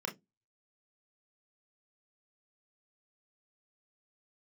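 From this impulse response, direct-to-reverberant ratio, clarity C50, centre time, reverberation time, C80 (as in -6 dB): 1.0 dB, 17.5 dB, 17 ms, 0.15 s, 28.0 dB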